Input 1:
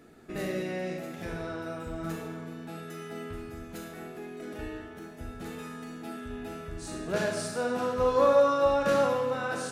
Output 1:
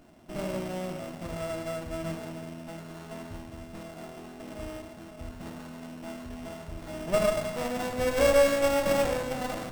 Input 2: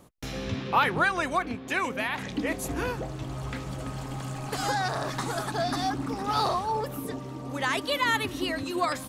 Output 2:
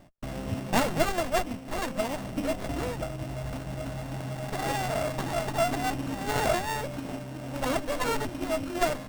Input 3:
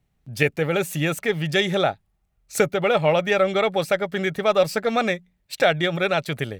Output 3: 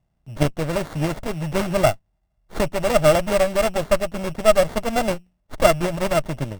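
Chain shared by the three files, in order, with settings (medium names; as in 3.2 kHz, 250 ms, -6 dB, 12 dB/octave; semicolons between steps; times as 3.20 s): sorted samples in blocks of 16 samples; graphic EQ with 31 bands 400 Hz -8 dB, 630 Hz +11 dB, 8 kHz +9 dB; sliding maximum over 17 samples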